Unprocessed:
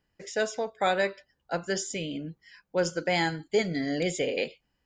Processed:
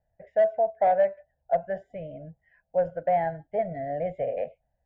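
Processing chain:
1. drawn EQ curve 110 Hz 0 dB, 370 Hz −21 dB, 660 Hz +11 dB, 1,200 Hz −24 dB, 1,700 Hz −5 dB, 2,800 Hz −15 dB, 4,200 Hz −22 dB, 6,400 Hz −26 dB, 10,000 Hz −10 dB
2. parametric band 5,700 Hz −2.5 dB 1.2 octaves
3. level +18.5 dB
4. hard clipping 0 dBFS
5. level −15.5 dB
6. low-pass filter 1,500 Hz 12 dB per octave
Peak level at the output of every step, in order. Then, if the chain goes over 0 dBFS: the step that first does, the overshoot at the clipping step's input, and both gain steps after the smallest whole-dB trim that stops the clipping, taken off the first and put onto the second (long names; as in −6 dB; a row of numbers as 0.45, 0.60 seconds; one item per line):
−13.5, −13.5, +5.0, 0.0, −15.5, −15.0 dBFS
step 3, 5.0 dB
step 3 +13.5 dB, step 5 −10.5 dB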